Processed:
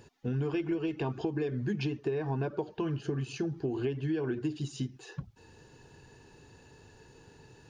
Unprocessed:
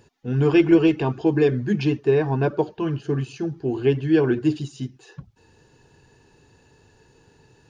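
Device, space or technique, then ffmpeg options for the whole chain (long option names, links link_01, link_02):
serial compression, peaks first: -af "acompressor=threshold=-26dB:ratio=4,acompressor=threshold=-30dB:ratio=2.5"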